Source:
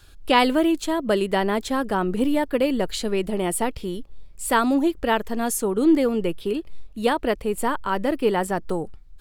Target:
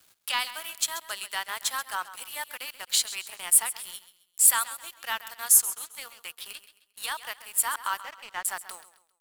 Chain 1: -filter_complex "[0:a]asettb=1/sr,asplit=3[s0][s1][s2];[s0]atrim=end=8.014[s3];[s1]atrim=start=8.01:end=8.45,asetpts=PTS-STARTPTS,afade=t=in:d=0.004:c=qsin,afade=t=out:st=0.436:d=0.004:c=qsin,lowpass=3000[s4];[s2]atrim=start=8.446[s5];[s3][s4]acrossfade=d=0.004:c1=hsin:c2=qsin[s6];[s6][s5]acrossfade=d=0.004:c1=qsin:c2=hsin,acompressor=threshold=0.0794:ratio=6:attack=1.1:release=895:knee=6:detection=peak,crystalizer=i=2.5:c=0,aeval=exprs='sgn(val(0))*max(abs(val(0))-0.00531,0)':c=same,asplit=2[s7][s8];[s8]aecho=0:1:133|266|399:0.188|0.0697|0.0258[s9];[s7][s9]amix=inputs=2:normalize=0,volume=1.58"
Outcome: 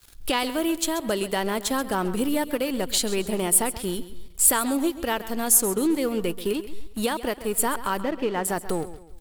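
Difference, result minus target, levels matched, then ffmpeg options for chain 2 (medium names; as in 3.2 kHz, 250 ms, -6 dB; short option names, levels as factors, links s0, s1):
1 kHz band +3.5 dB
-filter_complex "[0:a]asettb=1/sr,asplit=3[s0][s1][s2];[s0]atrim=end=8.014[s3];[s1]atrim=start=8.01:end=8.45,asetpts=PTS-STARTPTS,afade=t=in:d=0.004:c=qsin,afade=t=out:st=0.436:d=0.004:c=qsin,lowpass=3000[s4];[s2]atrim=start=8.446[s5];[s3][s4]acrossfade=d=0.004:c1=hsin:c2=qsin[s6];[s6][s5]acrossfade=d=0.004:c1=qsin:c2=hsin,acompressor=threshold=0.0794:ratio=6:attack=1.1:release=895:knee=6:detection=peak,highpass=f=1000:w=0.5412,highpass=f=1000:w=1.3066,crystalizer=i=2.5:c=0,aeval=exprs='sgn(val(0))*max(abs(val(0))-0.00531,0)':c=same,asplit=2[s7][s8];[s8]aecho=0:1:133|266|399:0.188|0.0697|0.0258[s9];[s7][s9]amix=inputs=2:normalize=0,volume=1.58"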